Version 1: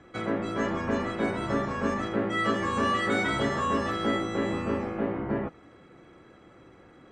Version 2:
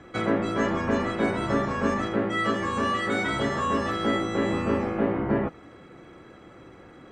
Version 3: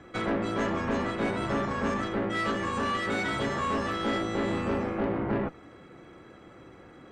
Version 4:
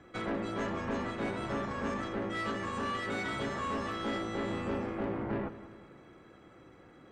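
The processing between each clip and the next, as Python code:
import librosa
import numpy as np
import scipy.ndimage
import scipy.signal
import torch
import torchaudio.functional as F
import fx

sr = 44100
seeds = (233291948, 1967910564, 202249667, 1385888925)

y1 = fx.rider(x, sr, range_db=10, speed_s=0.5)
y1 = y1 * 10.0 ** (2.5 / 20.0)
y2 = fx.tube_stage(y1, sr, drive_db=22.0, bias=0.5)
y3 = fx.echo_feedback(y2, sr, ms=190, feedback_pct=52, wet_db=-15.0)
y3 = y3 * 10.0 ** (-6.0 / 20.0)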